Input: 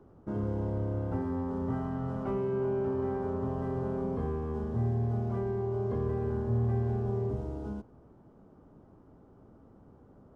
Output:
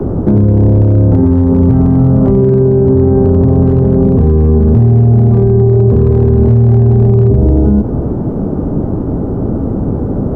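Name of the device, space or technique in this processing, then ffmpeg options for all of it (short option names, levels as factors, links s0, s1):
mastering chain: -filter_complex "[0:a]equalizer=f=1100:t=o:w=0.77:g=-2.5,acrossover=split=170|510[s0][s1][s2];[s0]acompressor=threshold=0.02:ratio=4[s3];[s1]acompressor=threshold=0.01:ratio=4[s4];[s2]acompressor=threshold=0.00251:ratio=4[s5];[s3][s4][s5]amix=inputs=3:normalize=0,acompressor=threshold=0.0126:ratio=2.5,tiltshelf=f=1100:g=10,asoftclip=type=hard:threshold=0.0631,alimiter=level_in=50.1:limit=0.891:release=50:level=0:latency=1,volume=0.891"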